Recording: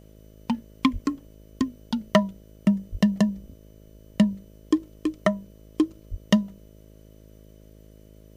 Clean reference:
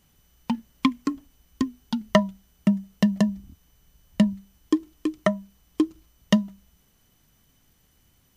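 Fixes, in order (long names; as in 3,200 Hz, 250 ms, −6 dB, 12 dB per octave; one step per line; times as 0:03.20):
clipped peaks rebuilt −7.5 dBFS
hum removal 52.9 Hz, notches 12
0:00.92–0:01.04: high-pass filter 140 Hz 24 dB per octave
0:02.91–0:03.03: high-pass filter 140 Hz 24 dB per octave
0:06.10–0:06.22: high-pass filter 140 Hz 24 dB per octave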